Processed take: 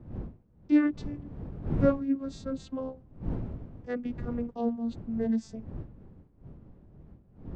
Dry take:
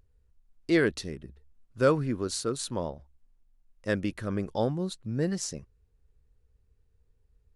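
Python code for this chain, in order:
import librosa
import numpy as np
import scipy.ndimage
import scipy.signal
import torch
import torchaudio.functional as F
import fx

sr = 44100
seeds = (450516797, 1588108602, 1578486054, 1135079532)

y = fx.vocoder_glide(x, sr, note=63, semitones=-8)
y = fx.dmg_wind(y, sr, seeds[0], corner_hz=170.0, level_db=-39.0)
y = fx.high_shelf(y, sr, hz=4300.0, db=-5.0)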